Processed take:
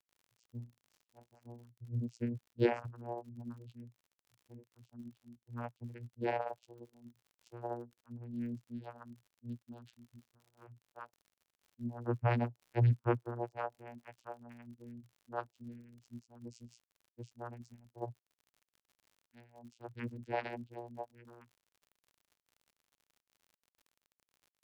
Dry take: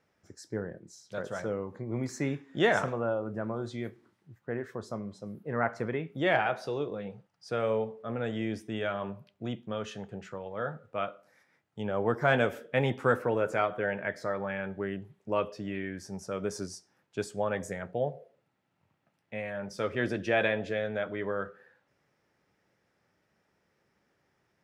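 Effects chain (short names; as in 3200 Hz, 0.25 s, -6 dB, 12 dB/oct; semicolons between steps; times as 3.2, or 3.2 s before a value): per-bin expansion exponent 3; vocoder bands 8, saw 119 Hz; crackle 63/s -55 dBFS; gain +1 dB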